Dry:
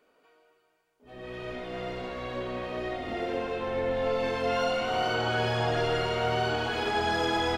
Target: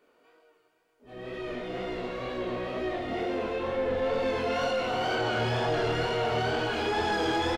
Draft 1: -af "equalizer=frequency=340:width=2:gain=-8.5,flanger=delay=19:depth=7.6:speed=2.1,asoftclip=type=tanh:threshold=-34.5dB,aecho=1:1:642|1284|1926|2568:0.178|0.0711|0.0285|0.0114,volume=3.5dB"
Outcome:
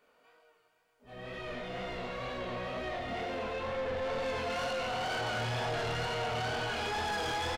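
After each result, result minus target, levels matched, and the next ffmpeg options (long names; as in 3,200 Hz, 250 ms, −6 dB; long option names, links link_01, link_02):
soft clipping: distortion +8 dB; 250 Hz band −4.5 dB
-af "equalizer=frequency=340:width=2:gain=-8.5,flanger=delay=19:depth=7.6:speed=2.1,asoftclip=type=tanh:threshold=-24.5dB,aecho=1:1:642|1284|1926|2568:0.178|0.0711|0.0285|0.0114,volume=3.5dB"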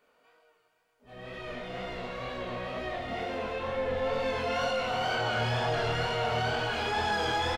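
250 Hz band −5.0 dB
-af "equalizer=frequency=340:width=2:gain=3.5,flanger=delay=19:depth=7.6:speed=2.1,asoftclip=type=tanh:threshold=-24.5dB,aecho=1:1:642|1284|1926|2568:0.178|0.0711|0.0285|0.0114,volume=3.5dB"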